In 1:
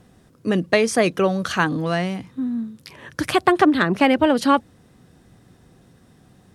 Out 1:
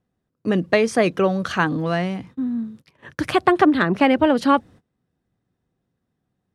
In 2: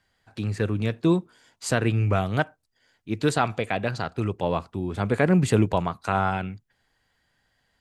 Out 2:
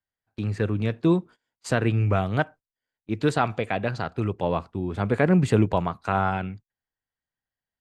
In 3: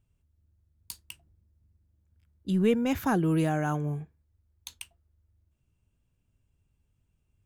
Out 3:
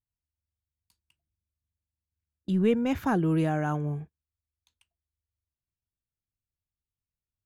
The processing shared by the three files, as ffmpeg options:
-af "aemphasis=mode=reproduction:type=cd,agate=range=-23dB:threshold=-41dB:ratio=16:detection=peak"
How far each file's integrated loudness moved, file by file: 0.0, 0.0, +0.5 LU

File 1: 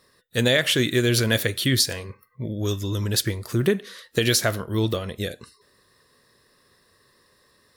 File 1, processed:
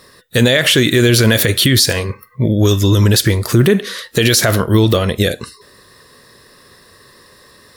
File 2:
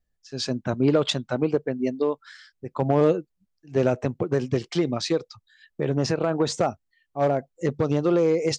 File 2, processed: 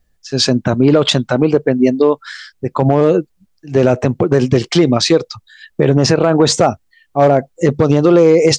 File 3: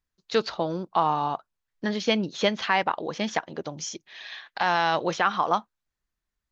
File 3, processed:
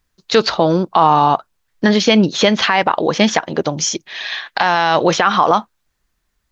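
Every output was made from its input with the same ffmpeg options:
-af "alimiter=level_in=16.5dB:limit=-1dB:release=50:level=0:latency=1,volume=-1dB"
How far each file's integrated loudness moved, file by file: +10.0, +11.0, +11.5 LU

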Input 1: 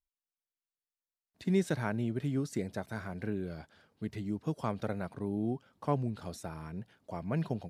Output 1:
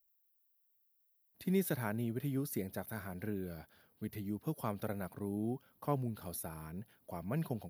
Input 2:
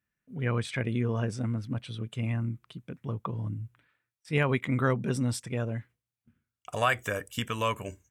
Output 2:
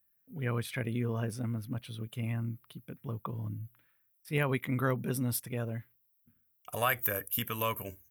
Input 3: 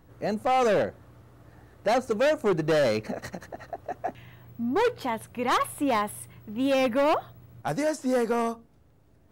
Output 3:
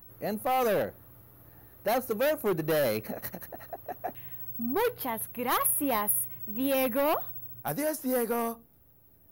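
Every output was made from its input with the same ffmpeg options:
-af "aexciter=amount=14.4:drive=7.3:freq=11000,volume=-4dB"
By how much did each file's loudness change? −3.5, −3.0, −3.0 LU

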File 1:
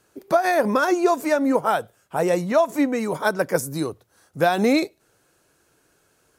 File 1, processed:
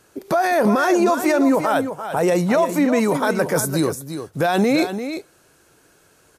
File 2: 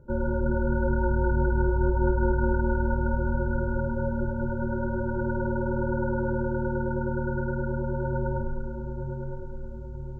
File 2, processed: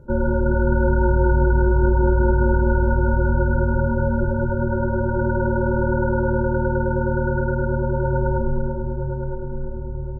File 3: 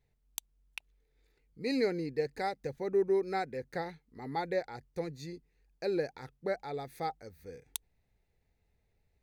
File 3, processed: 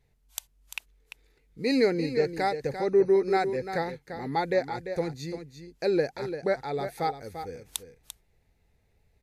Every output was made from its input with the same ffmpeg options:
-af "alimiter=limit=-17dB:level=0:latency=1:release=17,aecho=1:1:344:0.335,volume=7dB" -ar 32000 -c:a wmav2 -b:a 128k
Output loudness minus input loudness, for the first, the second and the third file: +2.5, +7.0, +7.5 LU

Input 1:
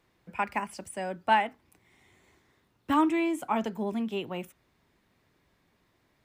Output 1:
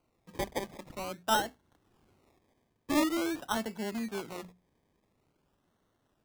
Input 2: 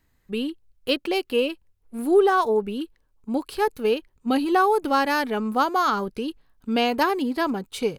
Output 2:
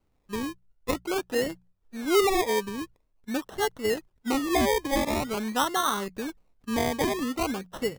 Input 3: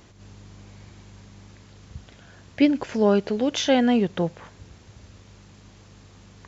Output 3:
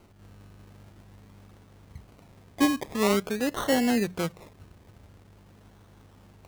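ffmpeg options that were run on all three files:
-af "acrusher=samples=25:mix=1:aa=0.000001:lfo=1:lforange=15:lforate=0.47,bandreject=frequency=60:width_type=h:width=6,bandreject=frequency=120:width_type=h:width=6,bandreject=frequency=180:width_type=h:width=6,volume=-4.5dB"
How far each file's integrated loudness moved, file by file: −4.0, −4.5, −4.5 LU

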